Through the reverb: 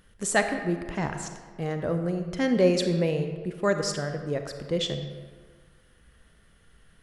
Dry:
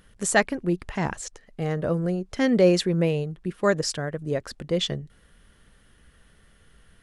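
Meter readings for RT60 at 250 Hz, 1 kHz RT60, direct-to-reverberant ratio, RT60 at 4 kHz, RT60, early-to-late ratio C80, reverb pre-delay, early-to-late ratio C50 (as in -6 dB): 1.5 s, 1.7 s, 6.5 dB, 0.95 s, 1.7 s, 8.5 dB, 33 ms, 7.0 dB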